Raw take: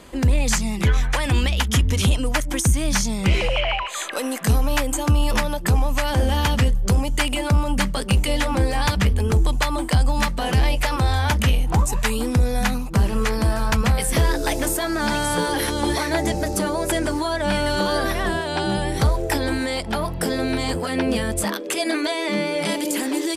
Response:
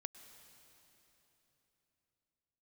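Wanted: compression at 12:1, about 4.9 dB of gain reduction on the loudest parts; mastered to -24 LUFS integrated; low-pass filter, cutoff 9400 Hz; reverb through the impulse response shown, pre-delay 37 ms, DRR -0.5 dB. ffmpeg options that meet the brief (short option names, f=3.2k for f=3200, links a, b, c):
-filter_complex "[0:a]lowpass=9.4k,acompressor=threshold=-18dB:ratio=12,asplit=2[a][b];[1:a]atrim=start_sample=2205,adelay=37[c];[b][c]afir=irnorm=-1:irlink=0,volume=4.5dB[d];[a][d]amix=inputs=2:normalize=0,volume=-3dB"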